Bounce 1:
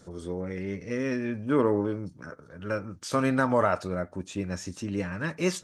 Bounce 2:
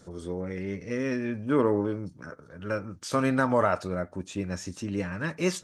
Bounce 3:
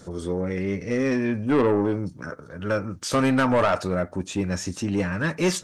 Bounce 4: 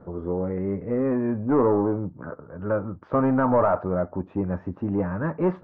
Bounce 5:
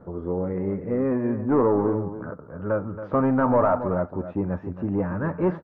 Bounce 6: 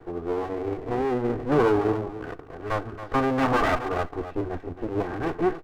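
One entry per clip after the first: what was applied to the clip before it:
no processing that can be heard
soft clipping −22 dBFS, distortion −11 dB; level +7.5 dB
transistor ladder low-pass 1,300 Hz, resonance 30%; level +6 dB
single-tap delay 276 ms −11.5 dB
lower of the sound and its delayed copy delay 2.6 ms; level +1.5 dB

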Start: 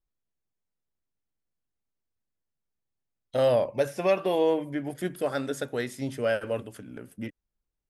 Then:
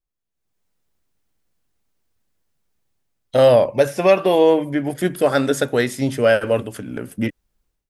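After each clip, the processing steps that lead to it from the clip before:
automatic gain control gain up to 16 dB
level −1.5 dB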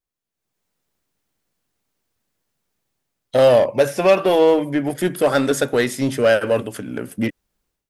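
low-shelf EQ 77 Hz −11.5 dB
in parallel at −10.5 dB: wave folding −17.5 dBFS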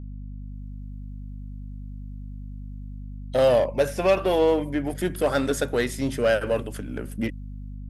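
mains hum 50 Hz, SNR 10 dB
level −6 dB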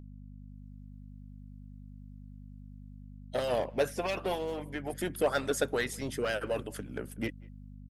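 harmonic and percussive parts rebalanced harmonic −14 dB
far-end echo of a speakerphone 190 ms, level −26 dB
level −3 dB

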